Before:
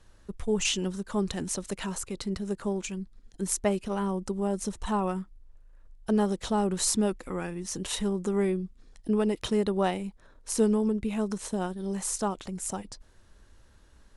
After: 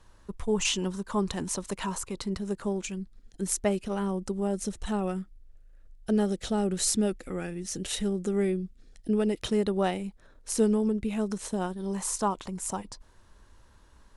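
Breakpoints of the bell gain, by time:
bell 1000 Hz 0.42 oct
2.12 s +7.5 dB
2.89 s -4 dB
4.43 s -4 dB
4.89 s -13 dB
9.11 s -13 dB
9.54 s -4 dB
11.29 s -4 dB
11.96 s +7.5 dB

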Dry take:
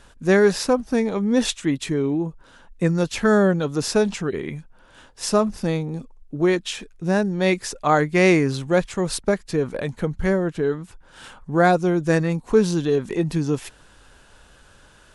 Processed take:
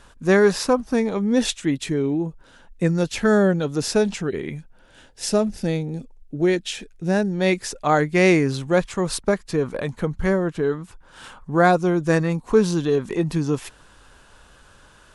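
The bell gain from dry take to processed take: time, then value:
bell 1100 Hz 0.46 oct
0.91 s +4 dB
1.41 s -4.5 dB
4.47 s -4.5 dB
5.24 s -12.5 dB
6.47 s -12.5 dB
7.54 s -2.5 dB
8.41 s -2.5 dB
8.9 s +4 dB

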